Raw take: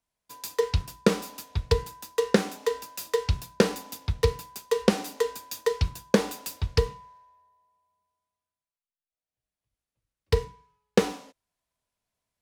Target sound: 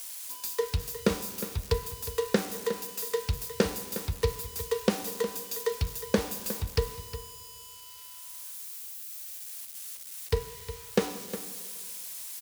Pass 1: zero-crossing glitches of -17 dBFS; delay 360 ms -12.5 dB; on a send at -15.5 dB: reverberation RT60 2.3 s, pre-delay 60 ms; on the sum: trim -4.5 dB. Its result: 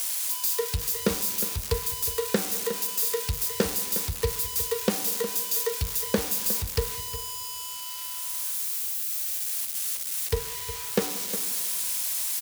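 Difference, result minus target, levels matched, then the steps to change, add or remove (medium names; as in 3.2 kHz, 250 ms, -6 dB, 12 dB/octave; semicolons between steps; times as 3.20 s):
zero-crossing glitches: distortion +11 dB
change: zero-crossing glitches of -28.5 dBFS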